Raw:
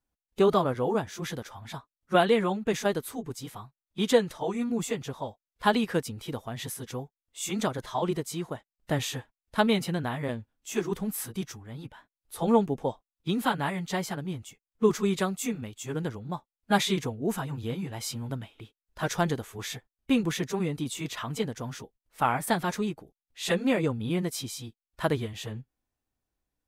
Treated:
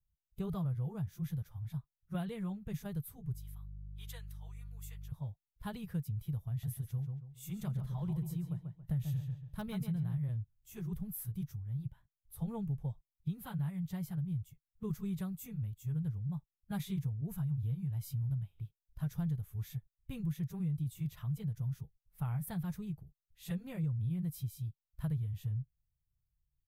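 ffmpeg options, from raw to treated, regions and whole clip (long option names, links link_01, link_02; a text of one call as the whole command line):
ffmpeg -i in.wav -filter_complex "[0:a]asettb=1/sr,asplit=3[link_01][link_02][link_03];[link_01]atrim=end=3.334[link_04];[link_02]atrim=start=3.33:end=5.12,asetpts=PTS-STARTPTS,afade=type=in:duration=0.004:curve=qsin,afade=type=out:start_time=1.786:duration=0.004:curve=qsin,highpass=1300,aeval=exprs='val(0)+0.00316*(sin(2*PI*50*n/s)+sin(2*PI*2*50*n/s)/2+sin(2*PI*3*50*n/s)/3+sin(2*PI*4*50*n/s)/4+sin(2*PI*5*50*n/s)/5)':channel_layout=same[link_05];[link_03]atrim=start=5.116[link_06];[link_04][link_05]acrossfade=duration=0.004:curve1=hsin:curve2=qsin[link_07];[link_07][link_06]acrossfade=duration=0.004:curve1=qsin:curve2=hsin,asettb=1/sr,asplit=3[link_08][link_09][link_10];[link_08]atrim=end=6.494[link_11];[link_09]atrim=start=6.49:end=10.18,asetpts=PTS-STARTPTS,afade=type=in:duration=0.004:curve=qsin,afade=type=out:start_time=3.686:duration=0.004:curve=qsin,asplit=2[link_12][link_13];[link_13]adelay=139,lowpass=frequency=3400:poles=1,volume=-6dB,asplit=2[link_14][link_15];[link_15]adelay=139,lowpass=frequency=3400:poles=1,volume=0.32,asplit=2[link_16][link_17];[link_17]adelay=139,lowpass=frequency=3400:poles=1,volume=0.32,asplit=2[link_18][link_19];[link_19]adelay=139,lowpass=frequency=3400:poles=1,volume=0.32[link_20];[link_12][link_14][link_16][link_18][link_20]amix=inputs=5:normalize=0,atrim=end_sample=162729,asoftclip=type=hard:threshold=-14dB[link_21];[link_10]atrim=start=10.176[link_22];[link_11][link_21]acrossfade=duration=0.004:curve1=hsin:curve2=qsin[link_23];[link_23][link_22]acrossfade=duration=0.004:curve1=qsin:curve2=hsin,firequalizer=gain_entry='entry(150,0);entry(240,-28);entry(7300,-26);entry(13000,-9)':delay=0.05:min_phase=1,acompressor=threshold=-38dB:ratio=4,volume=5.5dB" out.wav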